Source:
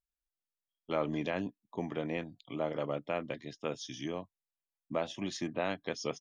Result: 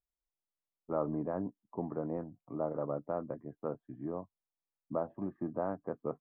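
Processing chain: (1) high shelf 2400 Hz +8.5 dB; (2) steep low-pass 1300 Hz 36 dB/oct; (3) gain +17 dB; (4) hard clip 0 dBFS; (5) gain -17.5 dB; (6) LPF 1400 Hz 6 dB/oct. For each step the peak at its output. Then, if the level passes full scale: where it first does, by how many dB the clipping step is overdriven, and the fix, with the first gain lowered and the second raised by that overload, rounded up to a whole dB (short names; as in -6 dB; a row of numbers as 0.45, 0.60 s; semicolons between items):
-16.5, -19.0, -2.0, -2.0, -19.5, -20.5 dBFS; no overload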